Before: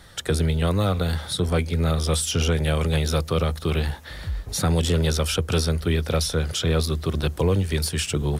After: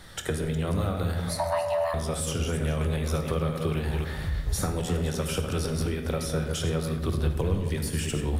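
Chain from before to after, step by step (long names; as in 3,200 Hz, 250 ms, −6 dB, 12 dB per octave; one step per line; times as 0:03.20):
delay that plays each chunk backwards 184 ms, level −7.5 dB
0:01.29–0:01.94: frequency shifter +500 Hz
0:05.43–0:05.83: transient designer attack −9 dB, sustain +12 dB
0:07.09–0:07.73: low-shelf EQ 100 Hz +8.5 dB
downward compressor 4 to 1, threshold −26 dBFS, peak gain reduction 11.5 dB
dynamic equaliser 4,200 Hz, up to −8 dB, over −48 dBFS, Q 1.2
on a send: convolution reverb RT60 1.0 s, pre-delay 5 ms, DRR 5 dB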